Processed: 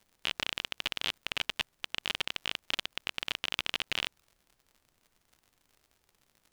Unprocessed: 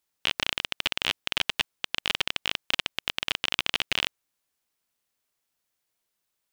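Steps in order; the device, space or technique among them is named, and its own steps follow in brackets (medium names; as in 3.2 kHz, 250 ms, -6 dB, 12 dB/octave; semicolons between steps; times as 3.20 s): warped LP (warped record 33 1/3 rpm, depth 100 cents; crackle 77 per s -42 dBFS; pink noise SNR 37 dB); trim -6 dB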